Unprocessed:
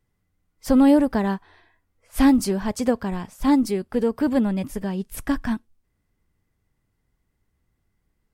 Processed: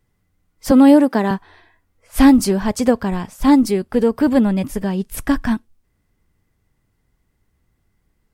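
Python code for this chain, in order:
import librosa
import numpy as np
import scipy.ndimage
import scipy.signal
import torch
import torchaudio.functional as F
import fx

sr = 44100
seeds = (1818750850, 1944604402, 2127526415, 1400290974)

y = fx.highpass(x, sr, hz=200.0, slope=24, at=(0.71, 1.31))
y = F.gain(torch.from_numpy(y), 6.0).numpy()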